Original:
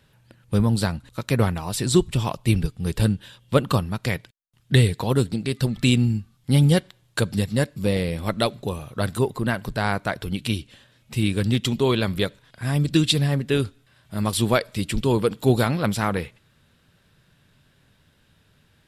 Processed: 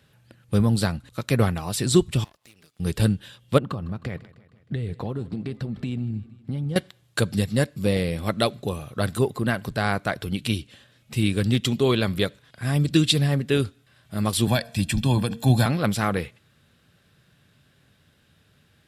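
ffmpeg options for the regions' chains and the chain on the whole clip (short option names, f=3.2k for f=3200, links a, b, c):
-filter_complex "[0:a]asettb=1/sr,asplit=3[a][b][c];[a]atrim=end=2.244[d];[b]atrim=start=2.24:end=2.8,asetpts=PTS-STARTPTS,afade=t=in:d=0.004:c=qsin,afade=t=out:st=0.556:d=0.004:c=qsin,highpass=f=1.4k:p=1,acompressor=threshold=-49dB:ratio=4:attack=3.2:release=140:knee=1:detection=peak,aeval=exprs='max(val(0),0)':c=same[e];[c]atrim=start=2.796[f];[d][e]acrossfade=d=0.004:c1=hsin:c2=qsin[g];[g][f]acrossfade=d=0.004:c1=qsin:c2=hsin,asettb=1/sr,asplit=3[h][i][j];[h]atrim=end=3.584[k];[i]atrim=start=3.58:end=6.76,asetpts=PTS-STARTPTS,afade=t=in:d=0.004:c=qsin,afade=t=out:st=3.176:d=0.004:c=qsin,lowpass=f=1.1k:p=1,acompressor=threshold=-24dB:ratio=12:attack=3.2:release=140:knee=1:detection=peak,aecho=1:1:156|312|468|624|780:0.106|0.0625|0.0369|0.0218|0.0128,atrim=end_sample=140238[l];[j]atrim=start=6.756[m];[k][l]acrossfade=d=0.004:c1=hsin:c2=qsin[n];[n][m]acrossfade=d=0.004:c1=qsin:c2=hsin,asettb=1/sr,asplit=3[o][p][q];[o]atrim=end=14.474[r];[p]atrim=start=14.47:end=15.66,asetpts=PTS-STARTPTS,afade=t=in:d=0.004:c=qsin,afade=t=out:st=1.186:d=0.004:c=qsin,bandreject=f=231.1:t=h:w=4,bandreject=f=462.2:t=h:w=4,bandreject=f=693.3:t=h:w=4,acrossover=split=300|3000[s][t][u];[t]acompressor=threshold=-21dB:ratio=6:attack=3.2:release=140:knee=2.83:detection=peak[v];[s][v][u]amix=inputs=3:normalize=0,aecho=1:1:1.2:0.76,atrim=end_sample=52479[w];[q]atrim=start=15.656[x];[r][w]acrossfade=d=0.004:c1=hsin:c2=qsin[y];[y][x]acrossfade=d=0.004:c1=qsin:c2=hsin,highpass=56,bandreject=f=940:w=11"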